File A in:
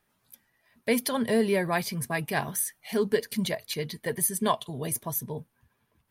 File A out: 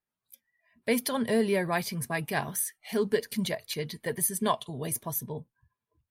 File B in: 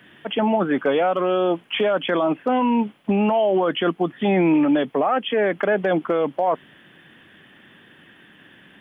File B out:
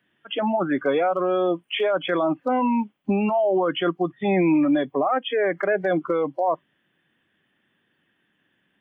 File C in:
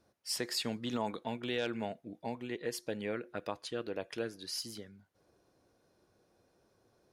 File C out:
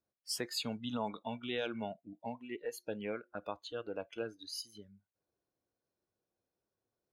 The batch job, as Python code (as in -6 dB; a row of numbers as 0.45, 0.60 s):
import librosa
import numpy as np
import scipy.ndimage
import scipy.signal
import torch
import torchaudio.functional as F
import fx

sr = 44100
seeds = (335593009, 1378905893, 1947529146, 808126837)

y = fx.noise_reduce_blind(x, sr, reduce_db=18)
y = y * librosa.db_to_amplitude(-1.5)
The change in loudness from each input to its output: -1.5, -2.0, -2.5 LU